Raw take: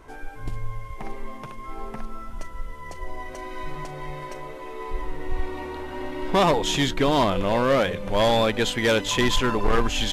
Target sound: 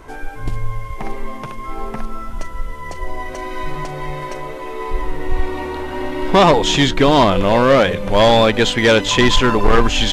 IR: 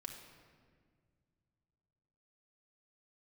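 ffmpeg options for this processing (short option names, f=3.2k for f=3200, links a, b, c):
-filter_complex "[0:a]acrossover=split=8000[a][b];[b]acompressor=threshold=-56dB:ratio=4:attack=1:release=60[c];[a][c]amix=inputs=2:normalize=0,volume=8.5dB"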